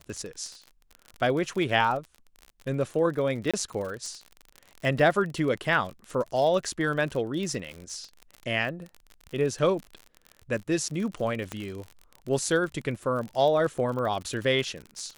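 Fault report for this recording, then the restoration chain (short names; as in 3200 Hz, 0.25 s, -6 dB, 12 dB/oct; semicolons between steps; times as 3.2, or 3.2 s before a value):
crackle 43/s -33 dBFS
3.51–3.54 gap 26 ms
11.52 pop -18 dBFS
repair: de-click; interpolate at 3.51, 26 ms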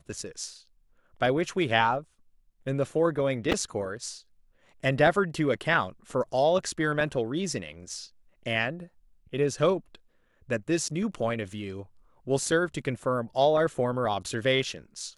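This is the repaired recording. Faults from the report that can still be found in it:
11.52 pop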